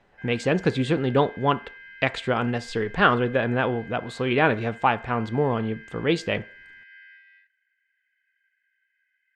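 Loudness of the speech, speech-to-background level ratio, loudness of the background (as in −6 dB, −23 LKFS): −24.5 LKFS, 20.0 dB, −44.5 LKFS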